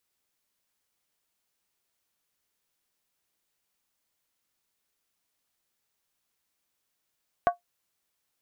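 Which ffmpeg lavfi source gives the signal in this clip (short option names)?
-f lavfi -i "aevalsrc='0.2*pow(10,-3*t/0.13)*sin(2*PI*702*t)+0.0891*pow(10,-3*t/0.103)*sin(2*PI*1119*t)+0.0398*pow(10,-3*t/0.089)*sin(2*PI*1499.5*t)+0.0178*pow(10,-3*t/0.086)*sin(2*PI*1611.8*t)+0.00794*pow(10,-3*t/0.08)*sin(2*PI*1862.4*t)':d=0.63:s=44100"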